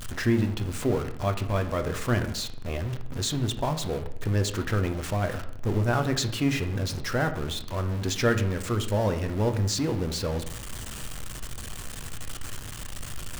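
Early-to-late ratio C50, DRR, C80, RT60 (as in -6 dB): 11.5 dB, 7.0 dB, 14.5 dB, 0.75 s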